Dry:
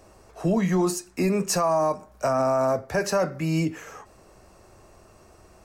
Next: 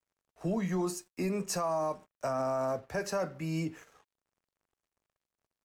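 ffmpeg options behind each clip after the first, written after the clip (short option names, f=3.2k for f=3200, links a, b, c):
-af "agate=range=-6dB:threshold=-39dB:ratio=16:detection=peak,aeval=exprs='sgn(val(0))*max(abs(val(0))-0.00251,0)':c=same,volume=-9dB"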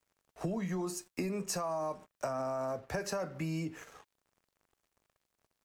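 -af "acompressor=threshold=-41dB:ratio=6,volume=7.5dB"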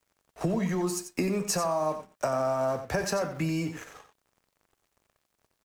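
-filter_complex "[0:a]asplit=2[a][b];[b]aeval=exprs='val(0)*gte(abs(val(0)),0.00708)':c=same,volume=-11dB[c];[a][c]amix=inputs=2:normalize=0,aecho=1:1:90:0.316,volume=5dB"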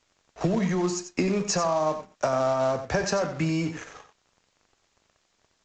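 -filter_complex "[0:a]asplit=2[a][b];[b]acrusher=bits=2:mode=log:mix=0:aa=0.000001,volume=-7dB[c];[a][c]amix=inputs=2:normalize=0" -ar 16000 -c:a pcm_alaw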